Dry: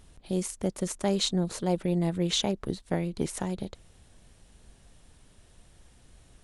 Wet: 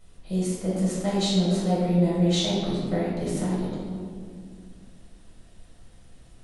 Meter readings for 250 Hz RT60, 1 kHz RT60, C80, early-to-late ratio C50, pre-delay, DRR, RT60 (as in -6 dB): 3.1 s, 1.9 s, 1.5 dB, -1.5 dB, 5 ms, -8.0 dB, 2.1 s